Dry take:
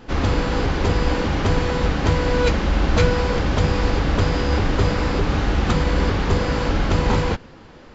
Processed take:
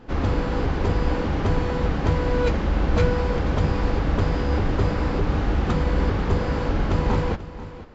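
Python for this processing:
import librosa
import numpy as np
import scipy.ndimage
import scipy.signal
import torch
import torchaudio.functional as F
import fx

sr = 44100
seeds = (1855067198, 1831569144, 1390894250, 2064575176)

y = fx.high_shelf(x, sr, hz=2200.0, db=-9.0)
y = y + 10.0 ** (-15.0 / 20.0) * np.pad(y, (int(488 * sr / 1000.0), 0))[:len(y)]
y = F.gain(torch.from_numpy(y), -2.5).numpy()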